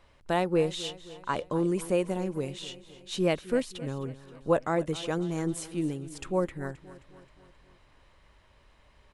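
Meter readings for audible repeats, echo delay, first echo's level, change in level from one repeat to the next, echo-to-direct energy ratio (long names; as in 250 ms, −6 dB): 4, 264 ms, −17.0 dB, −5.0 dB, −15.5 dB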